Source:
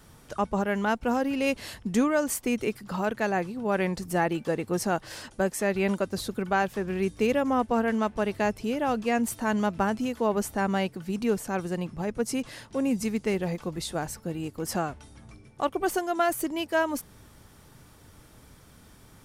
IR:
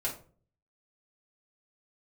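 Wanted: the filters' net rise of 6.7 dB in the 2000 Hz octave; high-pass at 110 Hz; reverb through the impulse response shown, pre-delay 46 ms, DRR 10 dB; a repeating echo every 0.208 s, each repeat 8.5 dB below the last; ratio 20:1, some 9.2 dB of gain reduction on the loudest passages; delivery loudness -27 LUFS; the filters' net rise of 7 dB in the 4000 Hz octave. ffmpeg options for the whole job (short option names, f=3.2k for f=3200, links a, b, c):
-filter_complex "[0:a]highpass=110,equalizer=f=2k:t=o:g=7.5,equalizer=f=4k:t=o:g=6.5,acompressor=threshold=-26dB:ratio=20,aecho=1:1:208|416|624|832:0.376|0.143|0.0543|0.0206,asplit=2[a][b];[1:a]atrim=start_sample=2205,adelay=46[c];[b][c]afir=irnorm=-1:irlink=0,volume=-14.5dB[d];[a][d]amix=inputs=2:normalize=0,volume=4dB"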